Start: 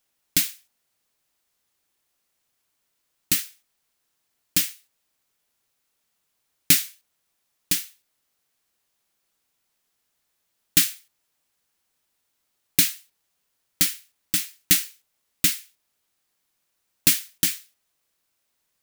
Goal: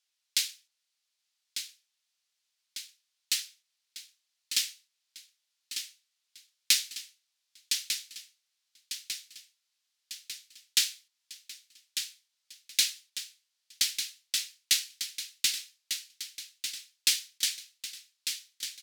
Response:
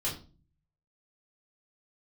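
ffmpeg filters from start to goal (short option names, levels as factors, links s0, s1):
-af "bandpass=f=4300:t=q:w=1.2:csg=0,aecho=1:1:1198|2396|3594|4792|5990|7188|8386:0.376|0.222|0.131|0.0772|0.0455|0.0269|0.0159"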